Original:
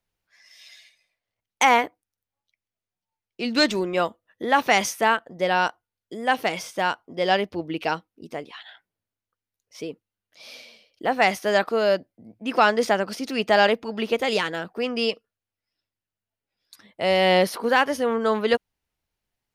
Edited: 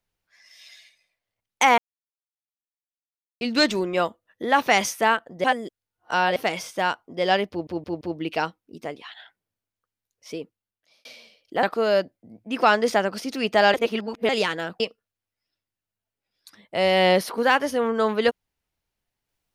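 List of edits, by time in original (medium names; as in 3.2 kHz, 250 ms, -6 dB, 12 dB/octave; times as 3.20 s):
1.78–3.41 s: mute
5.44–6.36 s: reverse
7.50 s: stutter 0.17 s, 4 plays
9.87–10.54 s: fade out
11.12–11.58 s: delete
13.69–14.24 s: reverse
14.75–15.06 s: delete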